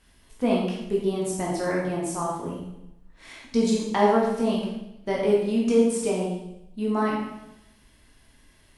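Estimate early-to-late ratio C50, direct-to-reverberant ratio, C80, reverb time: 1.5 dB, -4.0 dB, 4.5 dB, 0.85 s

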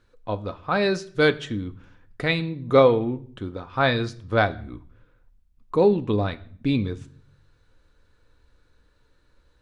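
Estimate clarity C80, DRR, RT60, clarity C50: 22.5 dB, 9.5 dB, 0.55 s, 19.0 dB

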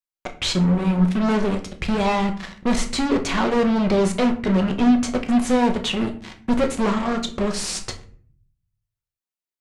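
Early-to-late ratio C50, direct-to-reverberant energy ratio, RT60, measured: 12.5 dB, 4.0 dB, 0.50 s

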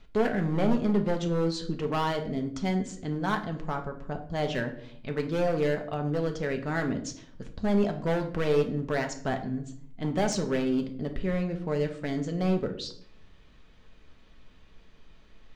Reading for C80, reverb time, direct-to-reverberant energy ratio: 15.0 dB, 0.60 s, 4.0 dB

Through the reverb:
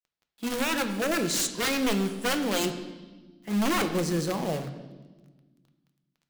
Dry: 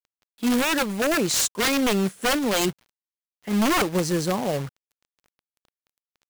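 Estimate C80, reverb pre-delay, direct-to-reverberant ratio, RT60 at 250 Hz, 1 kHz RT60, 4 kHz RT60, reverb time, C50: 12.0 dB, 6 ms, 6.5 dB, 2.2 s, 1.1 s, 1.3 s, 1.3 s, 10.0 dB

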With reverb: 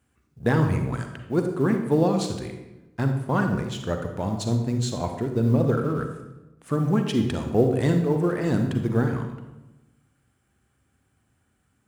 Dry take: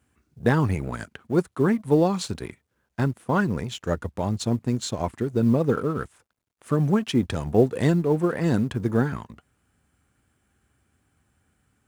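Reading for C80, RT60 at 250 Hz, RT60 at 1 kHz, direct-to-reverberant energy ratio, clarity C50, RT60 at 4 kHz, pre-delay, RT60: 8.5 dB, 1.3 s, 0.95 s, 5.0 dB, 6.0 dB, 0.70 s, 37 ms, 1.0 s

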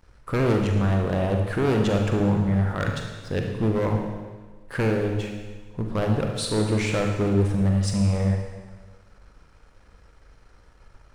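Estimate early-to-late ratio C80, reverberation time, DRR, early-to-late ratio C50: 5.5 dB, 1.4 s, 2.0 dB, 3.5 dB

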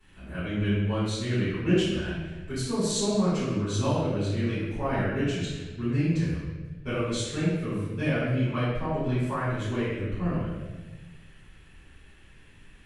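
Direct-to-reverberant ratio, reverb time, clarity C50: -14.0 dB, 1.2 s, -1.5 dB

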